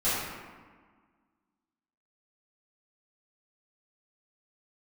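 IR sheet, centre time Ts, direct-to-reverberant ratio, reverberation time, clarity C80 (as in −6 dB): 105 ms, −14.5 dB, 1.6 s, 0.5 dB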